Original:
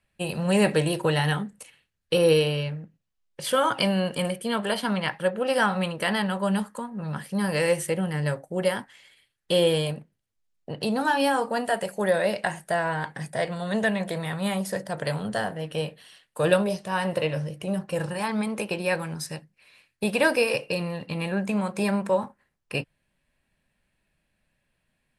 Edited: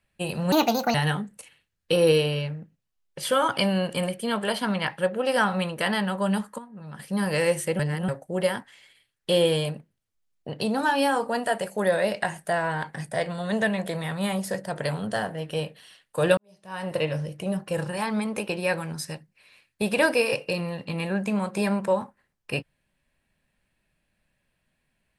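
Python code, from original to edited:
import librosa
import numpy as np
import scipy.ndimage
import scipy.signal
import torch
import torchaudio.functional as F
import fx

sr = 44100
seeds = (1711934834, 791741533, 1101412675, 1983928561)

y = fx.edit(x, sr, fx.speed_span(start_s=0.52, length_s=0.64, speed=1.51),
    fx.clip_gain(start_s=6.8, length_s=0.41, db=-9.0),
    fx.reverse_span(start_s=8.01, length_s=0.29),
    fx.fade_in_span(start_s=16.59, length_s=0.62, curve='qua'), tone=tone)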